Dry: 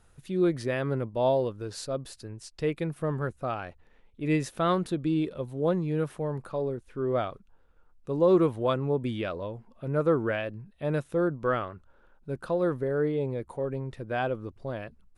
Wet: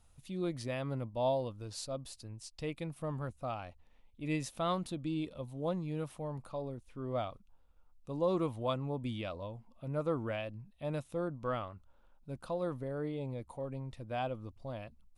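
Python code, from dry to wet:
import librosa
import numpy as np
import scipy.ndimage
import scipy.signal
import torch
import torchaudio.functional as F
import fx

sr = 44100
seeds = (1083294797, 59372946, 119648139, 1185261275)

y = fx.graphic_eq_15(x, sr, hz=(160, 400, 1600), db=(-5, -12, -11))
y = F.gain(torch.from_numpy(y), -3.0).numpy()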